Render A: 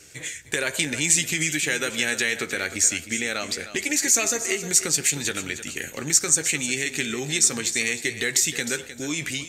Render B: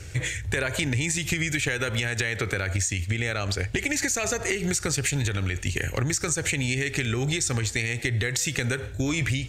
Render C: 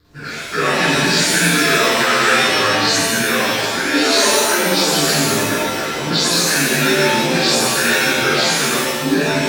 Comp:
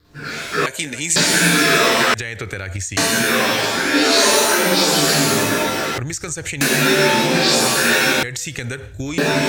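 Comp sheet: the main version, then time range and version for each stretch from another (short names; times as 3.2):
C
0.66–1.16 from A
2.14–2.97 from B
5.98–6.61 from B
8.23–9.18 from B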